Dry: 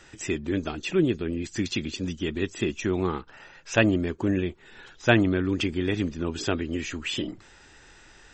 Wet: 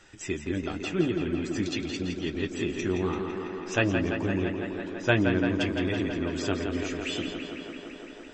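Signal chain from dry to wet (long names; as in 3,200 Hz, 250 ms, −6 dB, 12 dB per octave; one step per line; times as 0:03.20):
flanger 0.61 Hz, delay 9.8 ms, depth 2.4 ms, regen −37%
on a send: tape delay 168 ms, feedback 88%, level −5 dB, low-pass 4,400 Hz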